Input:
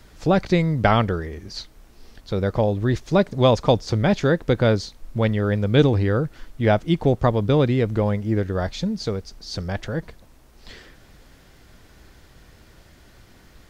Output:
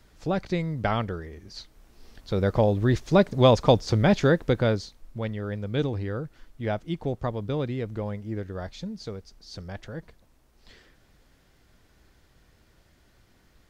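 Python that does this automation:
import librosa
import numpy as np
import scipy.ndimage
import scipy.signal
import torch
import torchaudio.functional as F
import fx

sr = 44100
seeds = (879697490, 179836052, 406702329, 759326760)

y = fx.gain(x, sr, db=fx.line((1.46, -8.5), (2.48, -1.0), (4.27, -1.0), (5.2, -10.5)))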